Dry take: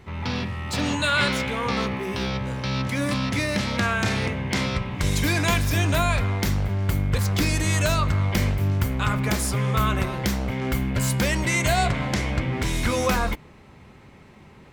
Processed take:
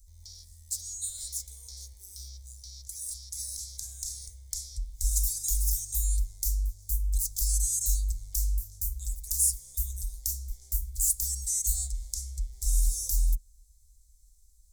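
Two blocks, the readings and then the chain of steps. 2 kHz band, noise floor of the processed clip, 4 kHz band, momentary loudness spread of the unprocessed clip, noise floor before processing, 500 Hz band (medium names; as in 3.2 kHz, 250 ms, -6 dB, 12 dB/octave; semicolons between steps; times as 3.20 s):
under -40 dB, -58 dBFS, -14.0 dB, 6 LU, -48 dBFS, under -40 dB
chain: inverse Chebyshev band-stop 110–2900 Hz, stop band 50 dB; trim +6.5 dB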